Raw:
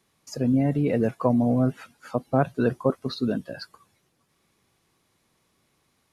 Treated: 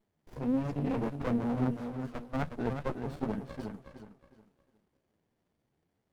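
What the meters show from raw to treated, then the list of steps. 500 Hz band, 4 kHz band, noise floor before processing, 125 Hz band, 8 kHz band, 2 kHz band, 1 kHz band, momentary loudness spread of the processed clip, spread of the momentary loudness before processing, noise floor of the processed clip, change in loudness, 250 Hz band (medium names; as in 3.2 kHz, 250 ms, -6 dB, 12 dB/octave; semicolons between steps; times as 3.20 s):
-11.0 dB, -13.5 dB, -70 dBFS, -9.0 dB, no reading, -7.5 dB, -8.0 dB, 13 LU, 17 LU, -80 dBFS, -9.5 dB, -8.5 dB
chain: flange 1.5 Hz, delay 8.8 ms, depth 6.9 ms, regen -2%; tape echo 364 ms, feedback 32%, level -5.5 dB, low-pass 3 kHz; sliding maximum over 33 samples; trim -5 dB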